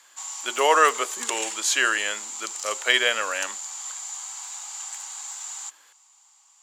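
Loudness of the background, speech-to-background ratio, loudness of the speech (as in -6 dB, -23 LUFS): -32.0 LUFS, 8.5 dB, -23.5 LUFS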